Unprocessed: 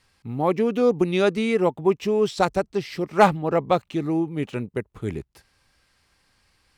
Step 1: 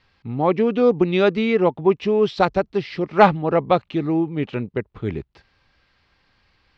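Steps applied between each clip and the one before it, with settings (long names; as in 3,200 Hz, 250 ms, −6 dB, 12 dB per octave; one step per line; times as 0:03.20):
low-pass filter 4,400 Hz 24 dB per octave
level +3 dB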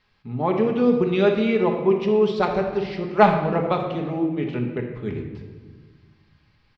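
far-end echo of a speakerphone 80 ms, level −22 dB
rectangular room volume 1,300 cubic metres, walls mixed, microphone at 1.4 metres
level −5 dB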